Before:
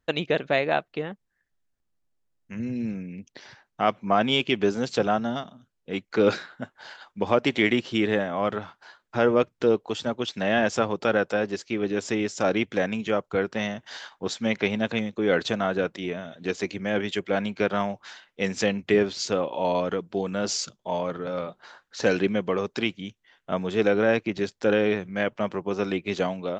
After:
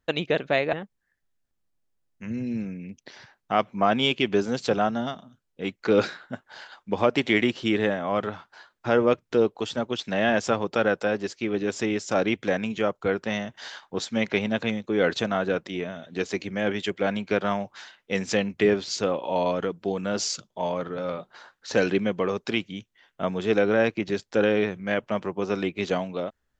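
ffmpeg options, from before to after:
-filter_complex "[0:a]asplit=2[a][b];[a]atrim=end=0.732[c];[b]atrim=start=1.018[d];[c][d]acrossfade=d=0.004:c1=hsin:c2=hsin"

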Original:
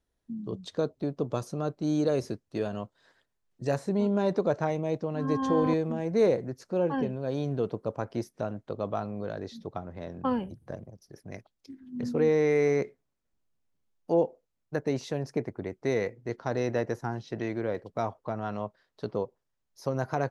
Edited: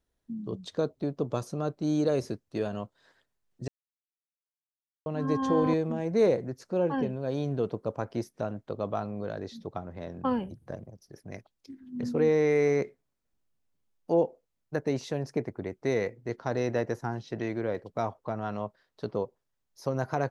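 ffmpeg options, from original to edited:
-filter_complex "[0:a]asplit=3[a][b][c];[a]atrim=end=3.68,asetpts=PTS-STARTPTS,afade=t=out:st=3.676:d=0.004:c=hsin[d];[b]atrim=start=3.68:end=5.06,asetpts=PTS-STARTPTS,volume=0[e];[c]atrim=start=5.06,asetpts=PTS-STARTPTS,afade=t=in:d=0.004:c=hsin[f];[d][e][f]concat=n=3:v=0:a=1"

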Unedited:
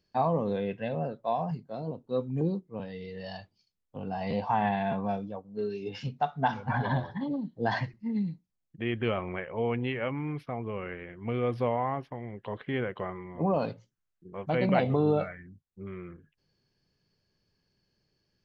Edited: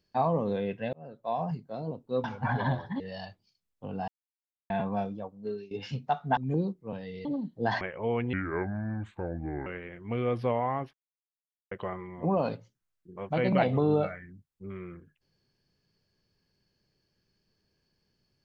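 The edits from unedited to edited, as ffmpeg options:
-filter_complex "[0:a]asplit=14[a][b][c][d][e][f][g][h][i][j][k][l][m][n];[a]atrim=end=0.93,asetpts=PTS-STARTPTS,afade=t=out:st=0.926:d=0.004:c=hsin[o];[b]atrim=start=0.93:end=2.242,asetpts=PTS-STARTPTS,afade=t=in:d=0.5[p];[c]atrim=start=6.488:end=7.252[q];[d]atrim=start=3.118:end=4.2,asetpts=PTS-STARTPTS,afade=t=out:st=1.078:d=0.004:c=hsin[r];[e]atrim=start=4.2:end=4.82,asetpts=PTS-STARTPTS,volume=0[s];[f]atrim=start=4.82:end=5.83,asetpts=PTS-STARTPTS,afade=t=in:d=0.004:c=hsin,afade=t=out:st=0.6:d=0.41:c=qsin:silence=0.125893[t];[g]atrim=start=5.83:end=6.492,asetpts=PTS-STARTPTS,afade=t=in:d=0.004:c=hsin:silence=0.125893[u];[h]atrim=start=2.238:end=3.122[v];[i]atrim=start=7.248:end=7.812[w];[j]atrim=start=9.348:end=9.874[x];[k]atrim=start=9.87:end=10.83,asetpts=PTS-STARTPTS,asetrate=31752,aresample=44100[y];[l]atrim=start=10.826:end=12.1,asetpts=PTS-STARTPTS,afade=t=out:st=1.27:d=0.004:c=hsin[z];[m]atrim=start=12.1:end=12.88,asetpts=PTS-STARTPTS,volume=0[aa];[n]atrim=start=12.88,asetpts=PTS-STARTPTS,afade=t=in:d=0.004:c=hsin[ab];[o][p]concat=n=2:v=0:a=1[ac];[ac][q]acrossfade=d=0.004:c1=hsin:c2=hsin[ad];[r][s][t][u]concat=n=4:v=0:a=1[ae];[ad][ae]acrossfade=d=0.004:c1=hsin:c2=hsin[af];[af][v]acrossfade=d=0.004:c1=hsin:c2=hsin[ag];[ag][w]acrossfade=d=0.004:c1=hsin:c2=hsin[ah];[ah][x]acrossfade=d=0.004:c1=hsin:c2=hsin[ai];[ai][y]acrossfade=d=0.004:c1=hsin:c2=hsin[aj];[z][aa][ab]concat=n=3:v=0:a=1[ak];[aj][ak]acrossfade=d=0.004:c1=hsin:c2=hsin"

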